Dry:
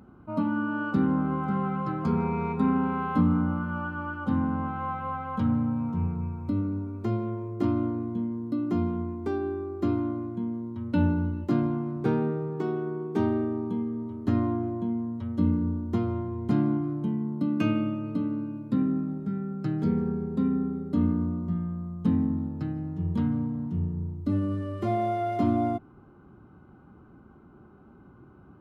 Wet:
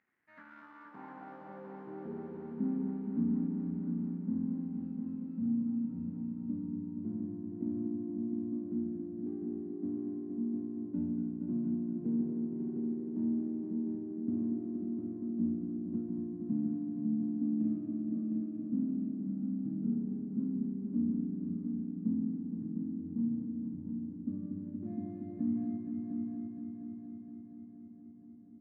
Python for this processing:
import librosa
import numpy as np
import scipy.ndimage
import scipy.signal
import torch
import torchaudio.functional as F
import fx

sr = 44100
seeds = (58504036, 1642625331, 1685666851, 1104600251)

y = scipy.ndimage.median_filter(x, 41, mode='constant')
y = fx.filter_sweep_bandpass(y, sr, from_hz=1900.0, to_hz=230.0, start_s=0.21, end_s=2.55, q=4.8)
y = fx.echo_heads(y, sr, ms=235, heads='all three', feedback_pct=64, wet_db=-8.0)
y = y * 10.0 ** (-4.5 / 20.0)